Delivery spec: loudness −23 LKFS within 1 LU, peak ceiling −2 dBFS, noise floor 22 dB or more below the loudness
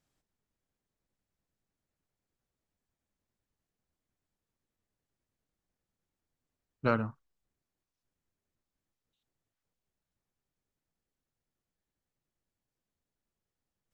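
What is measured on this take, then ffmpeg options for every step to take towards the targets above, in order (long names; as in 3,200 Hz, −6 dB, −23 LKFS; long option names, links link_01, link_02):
integrated loudness −33.0 LKFS; sample peak −12.5 dBFS; target loudness −23.0 LKFS
→ -af "volume=10dB"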